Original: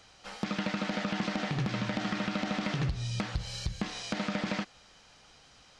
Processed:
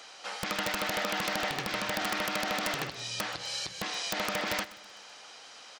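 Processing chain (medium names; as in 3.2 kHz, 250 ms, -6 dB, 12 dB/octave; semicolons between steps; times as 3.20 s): high-pass 440 Hz 12 dB/octave; in parallel at -2 dB: compression, threshold -51 dBFS, peak gain reduction 18 dB; on the sum: integer overflow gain 24.5 dB; feedback delay 127 ms, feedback 47%, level -18.5 dB; trim +4 dB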